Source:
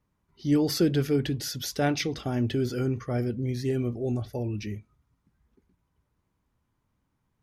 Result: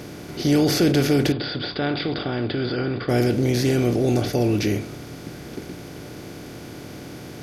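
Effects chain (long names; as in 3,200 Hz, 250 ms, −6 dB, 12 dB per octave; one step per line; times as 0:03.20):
compressor on every frequency bin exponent 0.4
in parallel at +1 dB: brickwall limiter −15.5 dBFS, peak gain reduction 6.5 dB
0:01.32–0:03.09: on the sum: Chebyshev low-pass with heavy ripple 4,900 Hz, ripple 6 dB
level −3 dB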